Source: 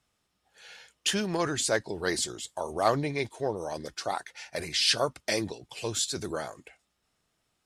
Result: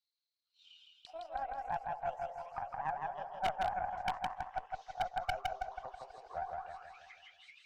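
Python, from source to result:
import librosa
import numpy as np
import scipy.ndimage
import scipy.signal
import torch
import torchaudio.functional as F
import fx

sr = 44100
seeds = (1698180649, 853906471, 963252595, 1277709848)

p1 = fx.pitch_glide(x, sr, semitones=10.0, runs='ending unshifted')
p2 = scipy.signal.sosfilt(scipy.signal.butter(2, 6800.0, 'lowpass', fs=sr, output='sos'), p1)
p3 = fx.dereverb_blind(p2, sr, rt60_s=0.67)
p4 = scipy.signal.sosfilt(scipy.signal.butter(2, 580.0, 'highpass', fs=sr, output='sos'), p3)
p5 = p4 + fx.echo_split(p4, sr, split_hz=1600.0, low_ms=227, high_ms=732, feedback_pct=52, wet_db=-13.5, dry=0)
p6 = fx.rider(p5, sr, range_db=4, speed_s=0.5)
p7 = fx.auto_wah(p6, sr, base_hz=750.0, top_hz=4200.0, q=17.0, full_db=-34.5, direction='down')
p8 = fx.cheby_harmonics(p7, sr, harmonics=(2, 3), levels_db=(-9, -17), full_scale_db=-27.5)
p9 = fx.echo_feedback(p8, sr, ms=162, feedback_pct=49, wet_db=-3)
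p10 = 10.0 ** (-34.0 / 20.0) * (np.abs((p9 / 10.0 ** (-34.0 / 20.0) + 3.0) % 4.0 - 2.0) - 1.0)
y = F.gain(torch.from_numpy(p10), 10.0).numpy()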